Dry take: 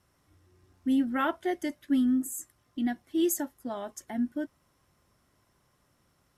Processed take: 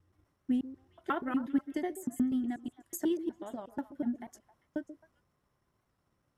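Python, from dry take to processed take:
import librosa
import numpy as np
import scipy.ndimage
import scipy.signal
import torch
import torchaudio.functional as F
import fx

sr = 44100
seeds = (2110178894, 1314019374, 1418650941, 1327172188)

p1 = fx.block_reorder(x, sr, ms=122.0, group=4)
p2 = fx.high_shelf(p1, sr, hz=2800.0, db=-8.5)
p3 = fx.transient(p2, sr, attack_db=8, sustain_db=4)
p4 = p3 + fx.echo_stepped(p3, sr, ms=133, hz=400.0, octaves=1.4, feedback_pct=70, wet_db=-10.5, dry=0)
p5 = fx.record_warp(p4, sr, rpm=78.0, depth_cents=100.0)
y = F.gain(torch.from_numpy(p5), -8.0).numpy()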